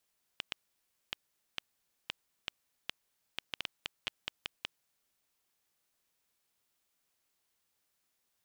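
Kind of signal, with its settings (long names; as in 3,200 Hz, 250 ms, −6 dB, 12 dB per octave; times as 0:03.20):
Geiger counter clicks 3.8 per second −16.5 dBFS 4.36 s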